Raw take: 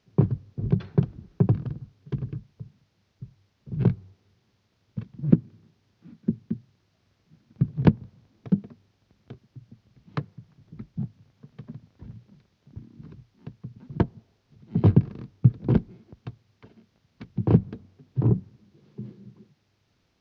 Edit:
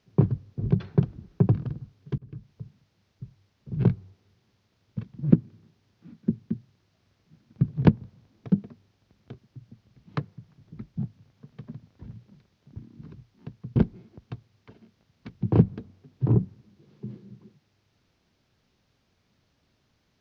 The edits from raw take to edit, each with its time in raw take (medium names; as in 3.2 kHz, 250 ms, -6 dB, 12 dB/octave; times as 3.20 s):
2.18–2.51 s: fade in
13.76–15.71 s: delete